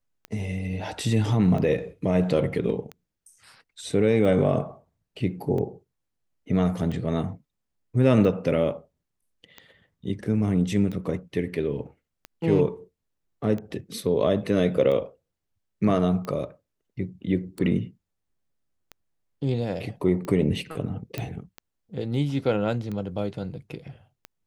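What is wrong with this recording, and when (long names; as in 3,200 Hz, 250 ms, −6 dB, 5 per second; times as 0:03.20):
scratch tick 45 rpm −22 dBFS
0:21.18: click −15 dBFS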